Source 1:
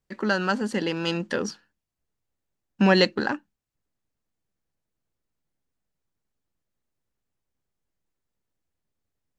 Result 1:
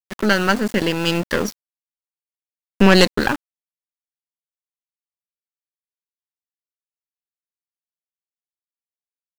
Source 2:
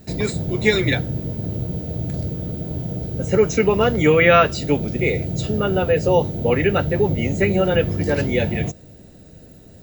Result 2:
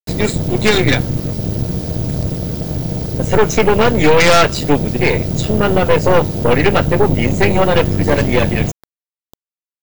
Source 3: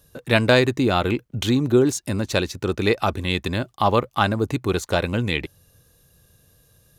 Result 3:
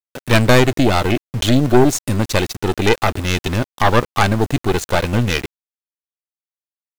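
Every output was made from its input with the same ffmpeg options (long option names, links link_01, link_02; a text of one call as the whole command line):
ffmpeg -i in.wav -af "aeval=exprs='val(0)*gte(abs(val(0)),0.0237)':channel_layout=same,aeval=exprs='0.891*(cos(1*acos(clip(val(0)/0.891,-1,1)))-cos(1*PI/2))+0.398*(cos(5*acos(clip(val(0)/0.891,-1,1)))-cos(5*PI/2))+0.316*(cos(8*acos(clip(val(0)/0.891,-1,1)))-cos(8*PI/2))':channel_layout=same,volume=-4dB" out.wav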